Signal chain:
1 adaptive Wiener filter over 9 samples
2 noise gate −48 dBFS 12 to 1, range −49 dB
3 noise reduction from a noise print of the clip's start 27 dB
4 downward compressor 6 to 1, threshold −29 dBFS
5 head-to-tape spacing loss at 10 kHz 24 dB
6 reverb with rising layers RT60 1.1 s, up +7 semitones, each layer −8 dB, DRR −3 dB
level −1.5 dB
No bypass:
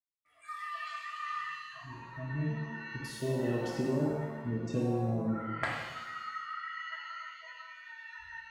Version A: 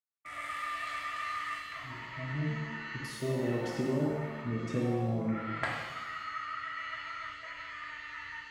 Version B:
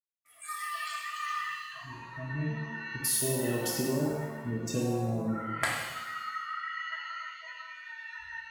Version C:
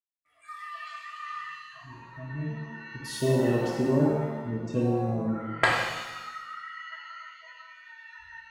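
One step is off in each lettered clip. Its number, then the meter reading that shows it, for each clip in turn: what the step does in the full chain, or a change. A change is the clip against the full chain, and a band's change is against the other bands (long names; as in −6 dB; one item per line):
3, 4 kHz band +2.0 dB
5, 8 kHz band +17.5 dB
4, average gain reduction 2.0 dB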